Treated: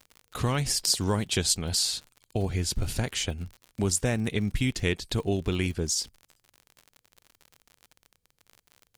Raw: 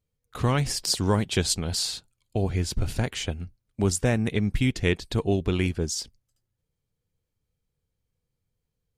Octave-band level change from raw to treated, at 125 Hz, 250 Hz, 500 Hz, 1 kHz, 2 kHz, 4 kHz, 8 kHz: −3.0, −3.5, −3.5, −3.0, −2.0, +1.0, +2.5 decibels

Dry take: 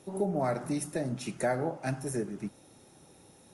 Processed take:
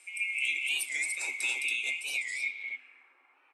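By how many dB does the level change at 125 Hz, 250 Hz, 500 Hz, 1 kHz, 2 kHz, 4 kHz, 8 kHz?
below −40 dB, below −25 dB, −26.5 dB, −19.0 dB, +14.5 dB, +15.0 dB, +5.5 dB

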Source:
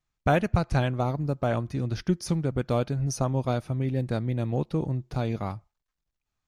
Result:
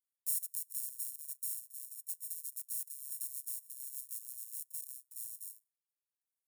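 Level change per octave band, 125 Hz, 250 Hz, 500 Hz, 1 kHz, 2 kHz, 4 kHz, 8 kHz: below −40 dB, below −40 dB, below −40 dB, below −40 dB, below −40 dB, −16.0 dB, +3.0 dB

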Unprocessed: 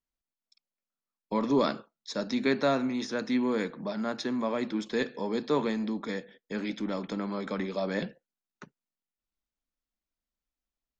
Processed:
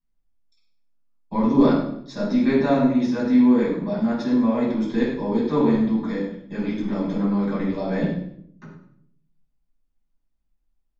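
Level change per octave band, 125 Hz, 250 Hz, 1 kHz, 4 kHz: +12.0, +11.5, +5.0, −1.5 decibels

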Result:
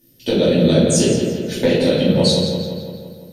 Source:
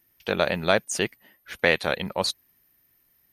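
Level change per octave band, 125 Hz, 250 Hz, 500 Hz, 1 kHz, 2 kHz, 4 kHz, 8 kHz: +17.5, +17.5, +10.0, −2.5, −4.5, +8.0, +10.5 decibels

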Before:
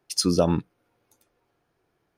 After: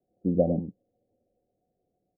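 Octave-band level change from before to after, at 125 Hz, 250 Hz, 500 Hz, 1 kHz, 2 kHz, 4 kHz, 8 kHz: −3.0 dB, −3.0 dB, −2.0 dB, −10.0 dB, below −40 dB, below −40 dB, below −40 dB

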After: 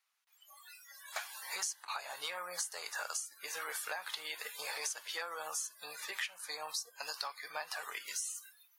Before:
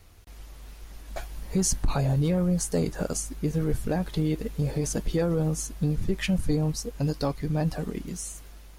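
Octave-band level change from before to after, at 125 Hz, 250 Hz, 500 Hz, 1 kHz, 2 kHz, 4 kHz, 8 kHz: below −40 dB, below −40 dB, −19.0 dB, −4.0 dB, +1.5 dB, −0.5 dB, −6.0 dB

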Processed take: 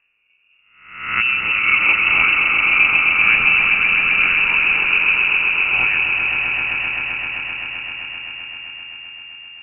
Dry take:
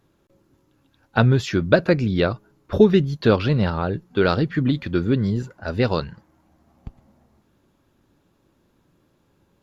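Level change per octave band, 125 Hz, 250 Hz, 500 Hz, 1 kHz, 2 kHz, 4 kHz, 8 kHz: below −15 dB, −17.5 dB, −18.5 dB, +5.0 dB, +18.5 dB, +10.5 dB, can't be measured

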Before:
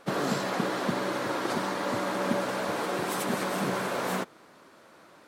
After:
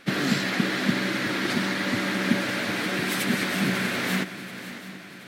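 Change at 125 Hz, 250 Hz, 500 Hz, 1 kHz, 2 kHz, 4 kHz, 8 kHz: +6.5, +6.5, −2.0, −2.5, +8.5, +8.5, +4.0 decibels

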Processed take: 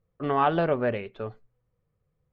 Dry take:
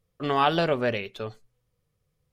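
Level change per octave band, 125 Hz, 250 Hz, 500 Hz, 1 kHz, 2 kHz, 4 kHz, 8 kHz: 0.0 dB, 0.0 dB, 0.0 dB, −0.5 dB, −3.5 dB, −11.5 dB, can't be measured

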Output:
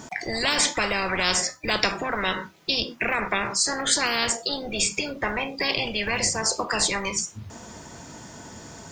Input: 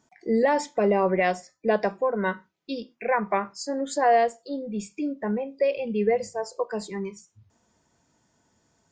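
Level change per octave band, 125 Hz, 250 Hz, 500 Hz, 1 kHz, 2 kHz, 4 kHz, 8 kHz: can't be measured, −4.0 dB, −7.0 dB, −2.5 dB, +7.5 dB, +19.0 dB, +18.0 dB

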